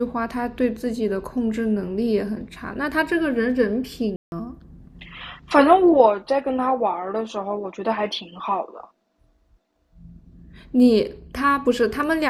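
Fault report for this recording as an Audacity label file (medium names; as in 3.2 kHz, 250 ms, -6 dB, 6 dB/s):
4.160000	4.320000	dropout 161 ms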